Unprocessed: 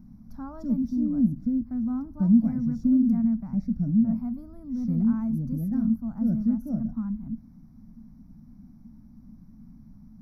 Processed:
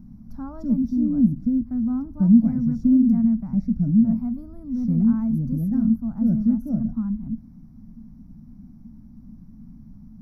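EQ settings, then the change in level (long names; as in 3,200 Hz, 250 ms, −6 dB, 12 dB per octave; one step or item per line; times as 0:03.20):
low-shelf EQ 470 Hz +5.5 dB
0.0 dB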